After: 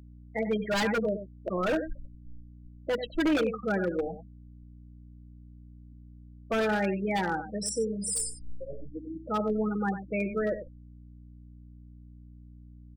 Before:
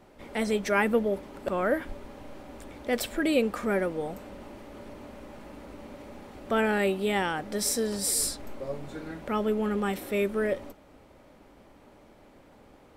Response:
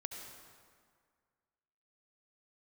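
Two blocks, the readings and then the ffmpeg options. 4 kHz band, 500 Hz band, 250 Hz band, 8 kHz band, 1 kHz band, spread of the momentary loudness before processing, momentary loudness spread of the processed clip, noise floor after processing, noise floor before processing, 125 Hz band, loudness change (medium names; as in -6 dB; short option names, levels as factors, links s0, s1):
-3.5 dB, -2.0 dB, -0.5 dB, -4.0 dB, -1.5 dB, 20 LU, 14 LU, -50 dBFS, -56 dBFS, +1.0 dB, -2.0 dB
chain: -filter_complex "[0:a]afftfilt=real='re*gte(hypot(re,im),0.0794)':imag='im*gte(hypot(re,im),0.0794)':win_size=1024:overlap=0.75,aecho=1:1:6.2:0.66,adynamicequalizer=threshold=0.00158:dfrequency=5200:dqfactor=7.6:tfrequency=5200:tqfactor=7.6:attack=5:release=100:ratio=0.375:range=2:mode=cutabove:tftype=bell,asplit=2[s0][s1];[s1]adelay=93.29,volume=0.282,highshelf=f=4000:g=-2.1[s2];[s0][s2]amix=inputs=2:normalize=0,aeval=exprs='val(0)+0.00447*(sin(2*PI*60*n/s)+sin(2*PI*2*60*n/s)/2+sin(2*PI*3*60*n/s)/3+sin(2*PI*4*60*n/s)/4+sin(2*PI*5*60*n/s)/5)':c=same,acrossover=split=260[s3][s4];[s4]aeval=exprs='0.0841*(abs(mod(val(0)/0.0841+3,4)-2)-1)':c=same[s5];[s3][s5]amix=inputs=2:normalize=0,volume=0.891"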